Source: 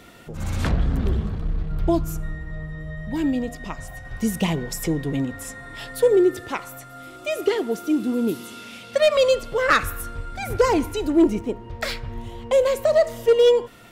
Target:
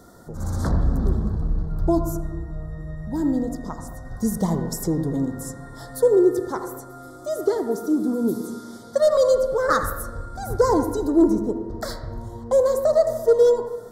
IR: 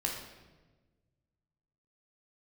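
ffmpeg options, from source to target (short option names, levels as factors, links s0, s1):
-filter_complex "[0:a]asuperstop=centerf=2600:order=4:qfactor=0.76,asplit=2[s0][s1];[1:a]atrim=start_sample=2205,lowpass=2800,adelay=80[s2];[s1][s2]afir=irnorm=-1:irlink=0,volume=0.266[s3];[s0][s3]amix=inputs=2:normalize=0"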